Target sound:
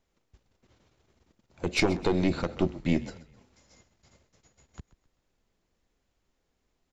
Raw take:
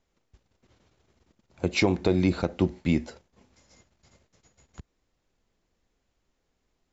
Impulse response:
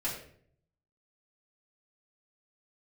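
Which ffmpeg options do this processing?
-filter_complex "[0:a]aeval=exprs='0.299*(cos(1*acos(clip(val(0)/0.299,-1,1)))-cos(1*PI/2))+0.119*(cos(2*acos(clip(val(0)/0.299,-1,1)))-cos(2*PI/2))':c=same,asplit=4[s0][s1][s2][s3];[s1]adelay=130,afreqshift=-37,volume=0.133[s4];[s2]adelay=260,afreqshift=-74,volume=0.0519[s5];[s3]adelay=390,afreqshift=-111,volume=0.0202[s6];[s0][s4][s5][s6]amix=inputs=4:normalize=0,volume=0.891"

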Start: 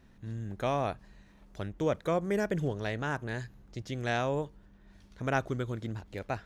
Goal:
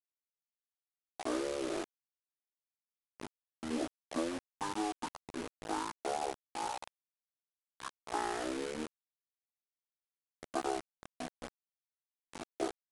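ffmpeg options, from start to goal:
-af "highpass=f=690:w=0.5412,highpass=f=690:w=1.3066,afwtdn=0.00891,highshelf=f=5500:g=5.5,aecho=1:1:6.1:0.87,acompressor=threshold=0.0224:ratio=16,acrusher=bits=6:mix=0:aa=0.000001,asetrate=22050,aresample=44100,volume=1.12"

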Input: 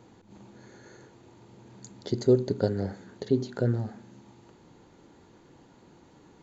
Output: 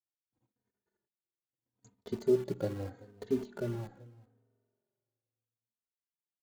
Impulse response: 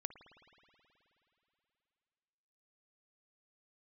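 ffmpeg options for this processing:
-filter_complex "[0:a]agate=range=0.00398:threshold=0.00501:ratio=16:detection=peak,equalizer=f=5300:w=1.6:g=-7,asplit=2[s0][s1];[s1]acrusher=bits=4:mix=0:aa=0.000001,volume=0.376[s2];[s0][s2]amix=inputs=2:normalize=0,aecho=1:1:383:0.0708,asplit=2[s3][s4];[1:a]atrim=start_sample=2205,asetrate=52920,aresample=44100,lowpass=2200[s5];[s4][s5]afir=irnorm=-1:irlink=0,volume=0.299[s6];[s3][s6]amix=inputs=2:normalize=0,asplit=2[s7][s8];[s8]adelay=3.1,afreqshift=-0.79[s9];[s7][s9]amix=inputs=2:normalize=1,volume=0.376"

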